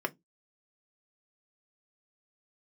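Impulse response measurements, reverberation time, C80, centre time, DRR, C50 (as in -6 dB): 0.15 s, 38.0 dB, 4 ms, 4.0 dB, 28.5 dB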